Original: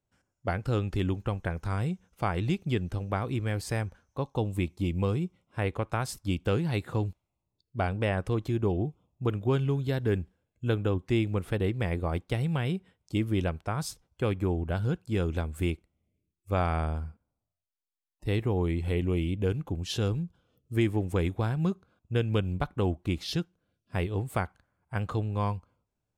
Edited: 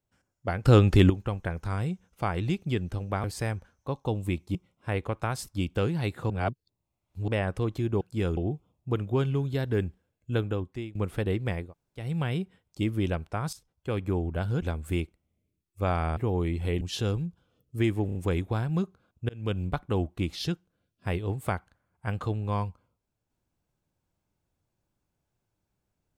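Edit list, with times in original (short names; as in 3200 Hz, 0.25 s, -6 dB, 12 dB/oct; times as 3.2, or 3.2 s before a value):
0.65–1.1 gain +10.5 dB
3.24–3.54 cut
4.85–5.25 cut
7–7.98 reverse
10.73–11.29 fade out, to -20.5 dB
11.96–12.38 room tone, crossfade 0.24 s
13.87–14.43 fade in, from -12.5 dB
14.96–15.32 move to 8.71
16.87–18.4 cut
19.04–19.78 cut
21.03 stutter 0.03 s, 4 plays
22.17–22.45 fade in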